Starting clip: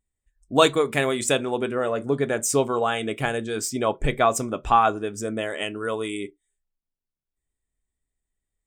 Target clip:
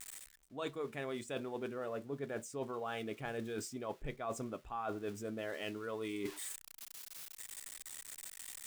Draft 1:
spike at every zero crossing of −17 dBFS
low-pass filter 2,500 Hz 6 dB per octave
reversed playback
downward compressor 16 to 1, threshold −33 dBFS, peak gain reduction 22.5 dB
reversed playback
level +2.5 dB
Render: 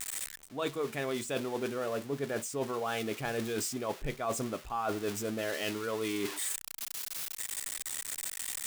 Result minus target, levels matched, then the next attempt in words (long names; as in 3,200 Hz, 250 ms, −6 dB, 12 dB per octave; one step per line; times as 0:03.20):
spike at every zero crossing: distortion +11 dB; downward compressor: peak gain reduction −6.5 dB
spike at every zero crossing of −28.5 dBFS
low-pass filter 2,500 Hz 6 dB per octave
reversed playback
downward compressor 16 to 1, threshold −40 dBFS, peak gain reduction 29 dB
reversed playback
level +2.5 dB